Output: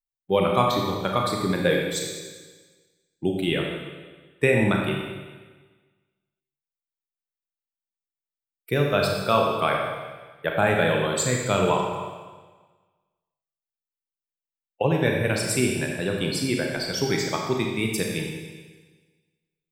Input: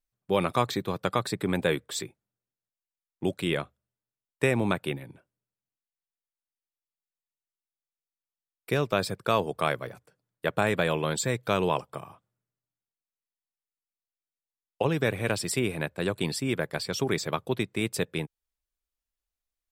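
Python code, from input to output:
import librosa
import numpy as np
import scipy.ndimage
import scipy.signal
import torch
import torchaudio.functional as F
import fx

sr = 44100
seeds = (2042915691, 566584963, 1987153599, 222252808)

y = fx.bin_expand(x, sr, power=1.5)
y = fx.rev_schroeder(y, sr, rt60_s=1.4, comb_ms=28, drr_db=0.0)
y = F.gain(torch.from_numpy(y), 5.0).numpy()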